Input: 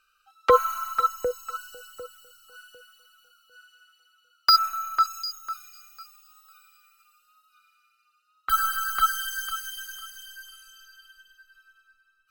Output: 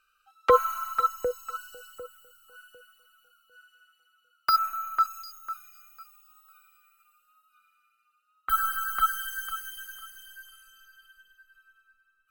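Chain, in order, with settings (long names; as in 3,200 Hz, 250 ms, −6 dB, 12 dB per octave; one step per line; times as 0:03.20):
parametric band 4,900 Hz −4.5 dB 1 octave, from 0:01.98 −12.5 dB
level −1.5 dB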